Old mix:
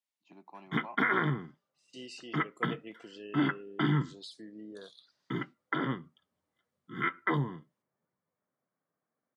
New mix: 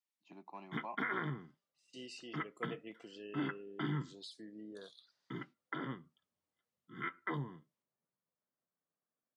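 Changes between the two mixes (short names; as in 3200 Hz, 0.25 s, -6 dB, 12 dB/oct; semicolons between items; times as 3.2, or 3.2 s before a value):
second voice -3.5 dB; background -9.5 dB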